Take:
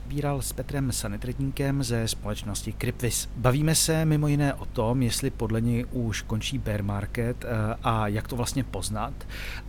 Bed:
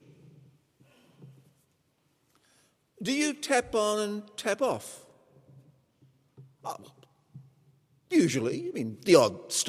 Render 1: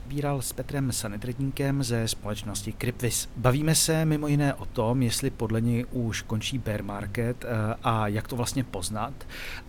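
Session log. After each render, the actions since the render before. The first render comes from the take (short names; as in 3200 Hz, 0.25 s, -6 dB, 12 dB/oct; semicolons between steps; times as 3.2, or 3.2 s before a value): de-hum 50 Hz, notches 4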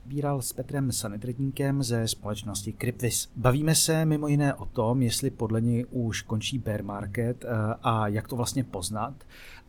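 noise print and reduce 10 dB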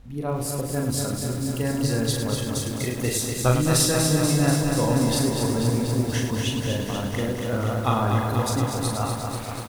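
reverse bouncing-ball echo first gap 40 ms, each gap 1.6×, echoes 5; lo-fi delay 0.242 s, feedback 80%, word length 7-bit, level -5 dB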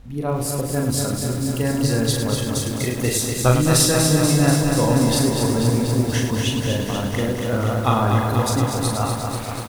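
gain +4 dB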